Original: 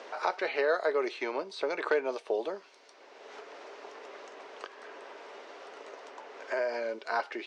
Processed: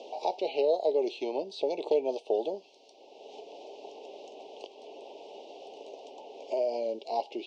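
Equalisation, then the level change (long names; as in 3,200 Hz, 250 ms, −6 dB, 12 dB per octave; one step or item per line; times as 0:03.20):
elliptic band-stop filter 820–2,800 Hz, stop band 60 dB
high-frequency loss of the air 79 metres
notch filter 980 Hz, Q 22
+3.5 dB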